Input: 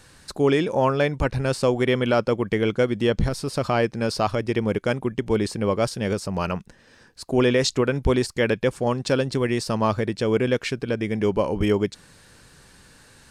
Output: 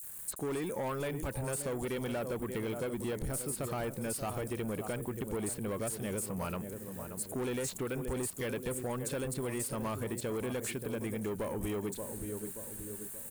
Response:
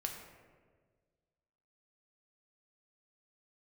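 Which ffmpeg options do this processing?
-filter_complex "[0:a]asplit=2[link_01][link_02];[link_02]adelay=579,lowpass=frequency=940:poles=1,volume=-11dB,asplit=2[link_03][link_04];[link_04]adelay=579,lowpass=frequency=940:poles=1,volume=0.54,asplit=2[link_05][link_06];[link_06]adelay=579,lowpass=frequency=940:poles=1,volume=0.54,asplit=2[link_07][link_08];[link_08]adelay=579,lowpass=frequency=940:poles=1,volume=0.54,asplit=2[link_09][link_10];[link_10]adelay=579,lowpass=frequency=940:poles=1,volume=0.54,asplit=2[link_11][link_12];[link_12]adelay=579,lowpass=frequency=940:poles=1,volume=0.54[link_13];[link_03][link_05][link_07][link_09][link_11][link_13]amix=inputs=6:normalize=0[link_14];[link_01][link_14]amix=inputs=2:normalize=0,aeval=exprs='val(0)*gte(abs(val(0)),0.00376)':channel_layout=same,aexciter=amount=10.8:drive=6:freq=7600,asoftclip=type=tanh:threshold=-20.5dB,acrossover=split=4700[link_15][link_16];[link_15]adelay=30[link_17];[link_17][link_16]amix=inputs=2:normalize=0,acompressor=threshold=-26dB:ratio=6,volume=-7dB"

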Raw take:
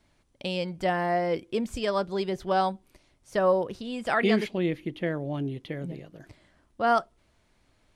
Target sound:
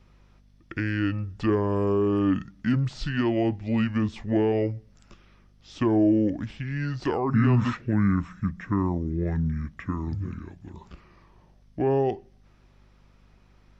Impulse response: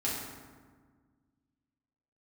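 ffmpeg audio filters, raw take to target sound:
-filter_complex "[0:a]asetrate=25442,aresample=44100,asplit=2[link_01][link_02];[link_02]alimiter=limit=-19dB:level=0:latency=1:release=22,volume=2dB[link_03];[link_01][link_03]amix=inputs=2:normalize=0,aeval=exprs='val(0)+0.002*(sin(2*PI*50*n/s)+sin(2*PI*2*50*n/s)/2+sin(2*PI*3*50*n/s)/3+sin(2*PI*4*50*n/s)/4+sin(2*PI*5*50*n/s)/5)':channel_layout=same,acrossover=split=420[link_04][link_05];[link_05]acompressor=threshold=-26dB:ratio=10[link_06];[link_04][link_06]amix=inputs=2:normalize=0,volume=-2.5dB"

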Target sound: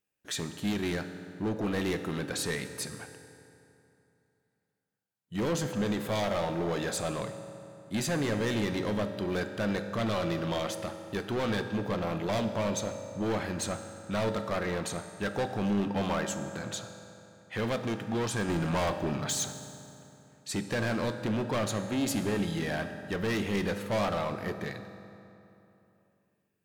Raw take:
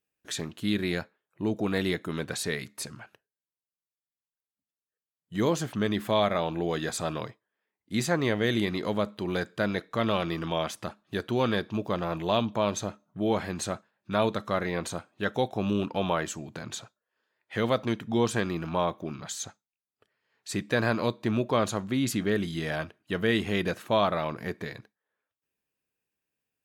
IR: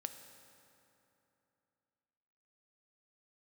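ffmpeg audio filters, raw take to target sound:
-filter_complex "[0:a]asettb=1/sr,asplit=3[link_01][link_02][link_03];[link_01]atrim=end=18.484[link_04];[link_02]atrim=start=18.48:end=19.46,asetpts=PTS-STARTPTS,afade=type=in:duration=0.004:curve=qsin,afade=type=out:start_time=0.976:duration=0.004:curve=qsin,acontrast=63[link_05];[link_03]atrim=start=19.456[link_06];[link_04][link_05]acrossfade=duration=0.004:curve1=hsin:curve2=qsin[link_07];[link_07][link_06]acrossfade=duration=0.004:curve1=qsin:curve2=hsin,volume=27dB,asoftclip=hard,volume=-27dB[link_08];[1:a]atrim=start_sample=2205[link_09];[link_08][link_09]afir=irnorm=-1:irlink=0,volume=3dB"

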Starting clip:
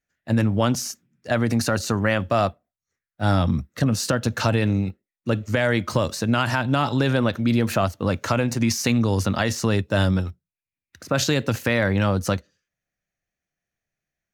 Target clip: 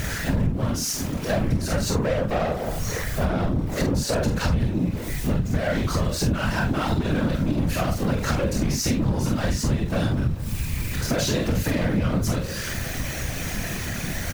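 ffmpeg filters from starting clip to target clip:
ffmpeg -i in.wav -filter_complex "[0:a]aeval=exprs='val(0)+0.5*0.0282*sgn(val(0))':channel_layout=same,asettb=1/sr,asplit=3[link_01][link_02][link_03];[link_01]atrim=end=1.834[link_04];[link_02]atrim=start=1.83:end=4.35,asetpts=PTS-STARTPTS,afade=type=in:duration=0.004:curve=qsin,afade=type=out:start_time=2.516:duration=0.004:curve=qsin,equalizer=frequency=510:width=0.69:gain=9[link_05];[link_03]atrim=start=4.346[link_06];[link_04][link_05]acrossfade=duration=0.004:curve1=hsin:curve2=qsin[link_07];[link_07][link_06]acrossfade=duration=0.004:curve1=qsin:curve2=hsin,aecho=1:1:26|44:0.596|0.376,alimiter=limit=-8dB:level=0:latency=1:release=385,asoftclip=type=tanh:threshold=-20dB,lowshelf=frequency=190:gain=10.5,acompressor=mode=upward:threshold=-26dB:ratio=2.5,asplit=2[link_08][link_09];[link_09]adelay=46,volume=-3.5dB[link_10];[link_08][link_10]amix=inputs=2:normalize=0,afftfilt=real='hypot(re,im)*cos(2*PI*random(0))':imag='hypot(re,im)*sin(2*PI*random(1))':win_size=512:overlap=0.75,acompressor=threshold=-27dB:ratio=5,volume=7.5dB" out.wav

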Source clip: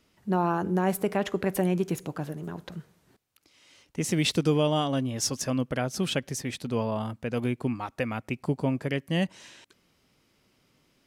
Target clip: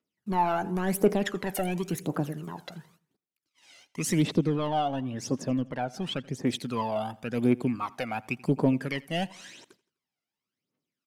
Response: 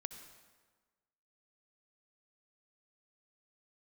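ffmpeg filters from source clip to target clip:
-filter_complex "[0:a]highpass=190,agate=range=-24dB:threshold=-59dB:ratio=16:detection=peak,asettb=1/sr,asplit=3[link_01][link_02][link_03];[link_01]atrim=end=4.224[link_04];[link_02]atrim=start=4.22:end=6.47,asetpts=PTS-STARTPTS,afade=type=in:duration=0.004:curve=qsin,afade=type=out:start_time=2.246:duration=0.004:curve=qsin,lowpass=frequency=1200:poles=1[link_05];[link_03]atrim=start=6.466[link_06];[link_04][link_05]acrossfade=duration=0.004:curve1=hsin:curve2=qsin[link_07];[link_07][link_06]acrossfade=duration=0.004:curve1=qsin:curve2=hsin,asoftclip=type=tanh:threshold=-19dB,aphaser=in_gain=1:out_gain=1:delay=1.5:decay=0.68:speed=0.93:type=triangular,aecho=1:1:84|168|252:0.0708|0.0347|0.017"

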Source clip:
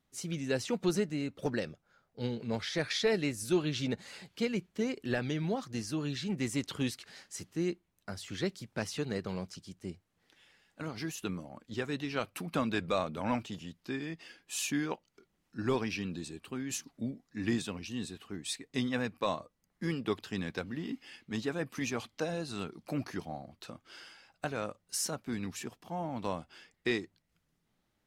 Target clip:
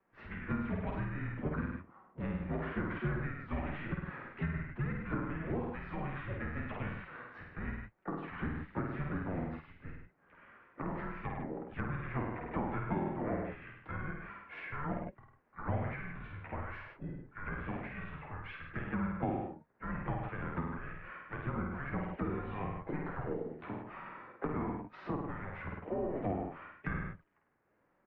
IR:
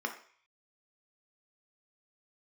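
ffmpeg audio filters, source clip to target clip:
-filter_complex "[0:a]lowshelf=frequency=360:width_type=q:width=1.5:gain=-13,bandreject=frequency=50:width_type=h:width=6,bandreject=frequency=100:width_type=h:width=6,bandreject=frequency=150:width_type=h:width=6,bandreject=frequency=200:width_type=h:width=6,asplit=4[link_01][link_02][link_03][link_04];[link_02]asetrate=35002,aresample=44100,atempo=1.25992,volume=-5dB[link_05];[link_03]asetrate=52444,aresample=44100,atempo=0.840896,volume=-15dB[link_06];[link_04]asetrate=66075,aresample=44100,atempo=0.66742,volume=-18dB[link_07];[link_01][link_05][link_06][link_07]amix=inputs=4:normalize=0,highpass=frequency=300:width_type=q:width=0.5412,highpass=frequency=300:width_type=q:width=1.307,lowpass=frequency=2300:width_type=q:width=0.5176,lowpass=frequency=2300:width_type=q:width=0.7071,lowpass=frequency=2300:width_type=q:width=1.932,afreqshift=-300,flanger=delay=5.2:depth=7.8:regen=46:speed=1:shape=sinusoidal,asplit=2[link_08][link_09];[link_09]adelay=50,volume=-3dB[link_10];[link_08][link_10]amix=inputs=2:normalize=0,asplit=2[link_11][link_12];[link_12]aecho=0:1:101:0.447[link_13];[link_11][link_13]amix=inputs=2:normalize=0,acrossover=split=85|770[link_14][link_15][link_16];[link_14]acompressor=threshold=-53dB:ratio=4[link_17];[link_15]acompressor=threshold=-45dB:ratio=4[link_18];[link_16]acompressor=threshold=-54dB:ratio=4[link_19];[link_17][link_18][link_19]amix=inputs=3:normalize=0,volume=9dB"

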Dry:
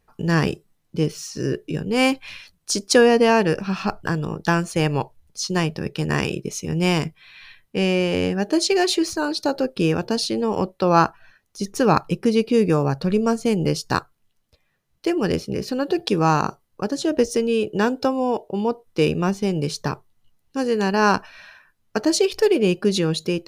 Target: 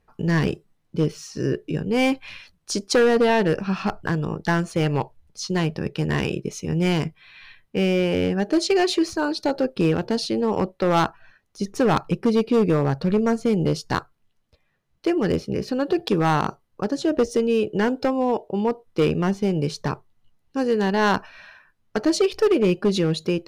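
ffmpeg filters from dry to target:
ffmpeg -i in.wav -af "aemphasis=mode=reproduction:type=cd,volume=13dB,asoftclip=hard,volume=-13dB" out.wav

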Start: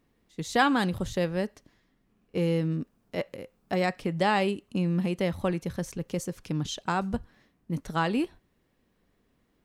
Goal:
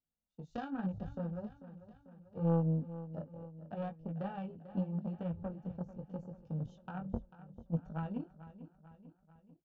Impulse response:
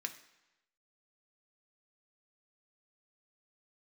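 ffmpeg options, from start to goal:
-filter_complex "[0:a]afwtdn=0.0158,highshelf=frequency=2500:gain=-12,aecho=1:1:1.4:0.66,acrossover=split=340[link_01][link_02];[link_02]acompressor=threshold=-41dB:ratio=2.5[link_03];[link_01][link_03]amix=inputs=2:normalize=0,flanger=delay=18:depth=4.3:speed=0.77,aeval=exprs='0.106*(cos(1*acos(clip(val(0)/0.106,-1,1)))-cos(1*PI/2))+0.0237*(cos(3*acos(clip(val(0)/0.106,-1,1)))-cos(3*PI/2))':channel_layout=same,asuperstop=centerf=2100:order=4:qfactor=4.3,aecho=1:1:443|886|1329|1772|2215:0.188|0.104|0.057|0.0313|0.0172,asplit=2[link_04][link_05];[1:a]atrim=start_sample=2205,atrim=end_sample=4410[link_06];[link_05][link_06]afir=irnorm=-1:irlink=0,volume=-15.5dB[link_07];[link_04][link_07]amix=inputs=2:normalize=0,aresample=16000,aresample=44100"

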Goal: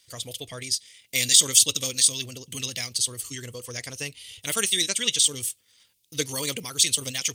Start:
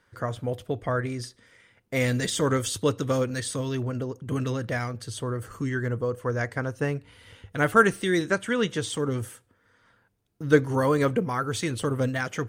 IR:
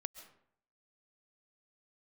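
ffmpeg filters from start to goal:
-af "aexciter=amount=15.6:drive=7:freq=2400,atempo=1.7,volume=-11dB"

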